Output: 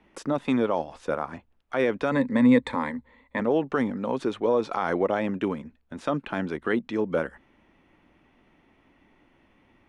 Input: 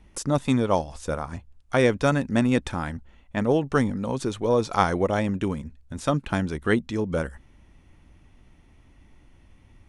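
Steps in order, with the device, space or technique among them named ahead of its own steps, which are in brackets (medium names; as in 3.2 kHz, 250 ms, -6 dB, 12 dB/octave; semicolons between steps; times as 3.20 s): DJ mixer with the lows and highs turned down (three-band isolator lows -19 dB, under 200 Hz, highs -17 dB, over 3.5 kHz; peak limiter -16 dBFS, peak gain reduction 11.5 dB); 2.11–3.40 s: rippled EQ curve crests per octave 1, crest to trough 14 dB; trim +2 dB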